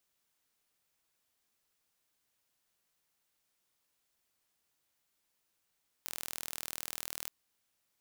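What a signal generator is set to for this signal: pulse train 40.2 per s, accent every 0, -11.5 dBFS 1.22 s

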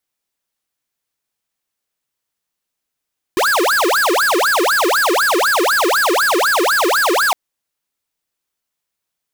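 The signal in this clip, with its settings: siren wail 335–1680 Hz 4 per s square -14.5 dBFS 3.96 s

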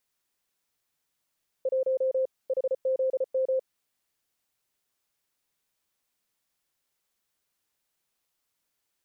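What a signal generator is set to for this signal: Morse "1 HZM" 34 wpm 523 Hz -22.5 dBFS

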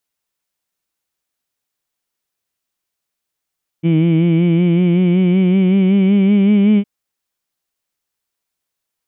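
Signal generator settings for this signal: formant-synthesis vowel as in heed, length 3.01 s, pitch 161 Hz, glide +4.5 st, vibrato depth 0.65 st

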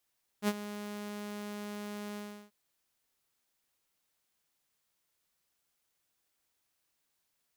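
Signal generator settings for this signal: ADSR saw 207 Hz, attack 61 ms, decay 43 ms, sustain -14 dB, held 1.74 s, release 347 ms -22.5 dBFS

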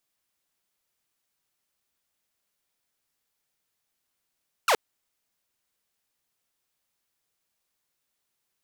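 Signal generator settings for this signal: laser zap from 1.5 kHz, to 390 Hz, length 0.07 s saw, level -15.5 dB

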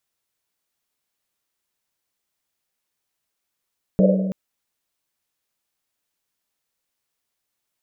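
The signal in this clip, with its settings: Risset drum length 0.33 s, pitch 190 Hz, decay 2.00 s, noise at 550 Hz, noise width 140 Hz, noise 35%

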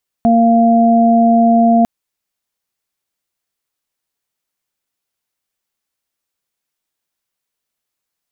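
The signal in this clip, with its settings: steady additive tone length 1.60 s, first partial 231 Hz, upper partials -19/-2 dB, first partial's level -9 dB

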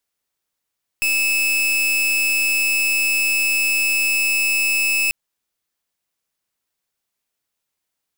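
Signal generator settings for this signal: pulse 2.61 kHz, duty 40% -18.5 dBFS 4.09 s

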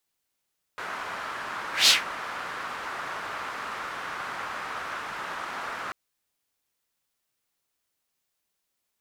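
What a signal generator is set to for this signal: whoosh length 5.14 s, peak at 1.10 s, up 0.16 s, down 0.17 s, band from 1.3 kHz, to 4.3 kHz, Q 2, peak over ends 18.5 dB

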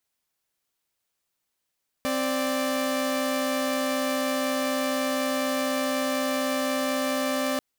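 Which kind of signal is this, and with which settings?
chord C4/D5 saw, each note -24.5 dBFS 5.54 s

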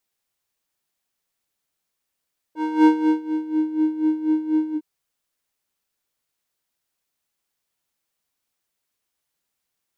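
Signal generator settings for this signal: synth patch with tremolo D#4, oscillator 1 square, interval +7 st, oscillator 2 level -18 dB, sub -29.5 dB, noise -23 dB, filter bandpass, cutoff 220 Hz, Q 3, filter envelope 1.5 oct, filter decay 1.11 s, filter sustain 45%, attack 264 ms, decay 0.41 s, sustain -15.5 dB, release 0.07 s, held 2.19 s, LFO 4.1 Hz, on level 13 dB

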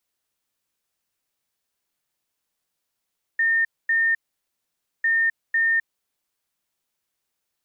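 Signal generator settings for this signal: beep pattern sine 1.82 kHz, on 0.26 s, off 0.24 s, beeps 2, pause 0.89 s, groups 2, -17 dBFS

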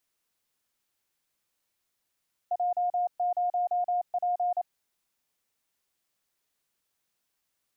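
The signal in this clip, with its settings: Morse "J0P" 28 wpm 713 Hz -24 dBFS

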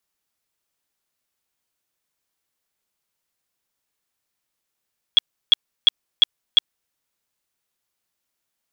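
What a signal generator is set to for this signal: tone bursts 3.34 kHz, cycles 53, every 0.35 s, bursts 5, -7.5 dBFS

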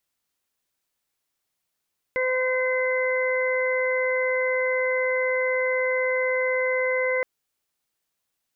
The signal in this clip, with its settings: steady additive tone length 5.07 s, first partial 512 Hz, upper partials -11/-11/-2.5 dB, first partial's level -23 dB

